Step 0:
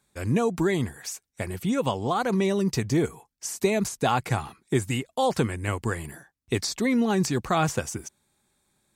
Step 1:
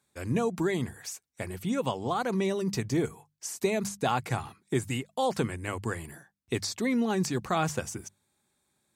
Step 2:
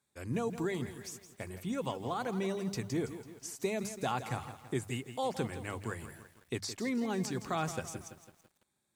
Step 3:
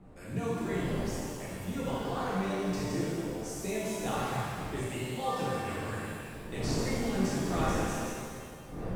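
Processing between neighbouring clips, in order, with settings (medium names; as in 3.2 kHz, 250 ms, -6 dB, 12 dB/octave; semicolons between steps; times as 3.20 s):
high-pass 64 Hz; hum notches 50/100/150/200 Hz; trim -4 dB
bit-crushed delay 166 ms, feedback 55%, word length 8-bit, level -11.5 dB; trim -6.5 dB
wind noise 350 Hz -42 dBFS; pitch-shifted reverb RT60 1.9 s, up +7 st, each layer -8 dB, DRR -9 dB; trim -7.5 dB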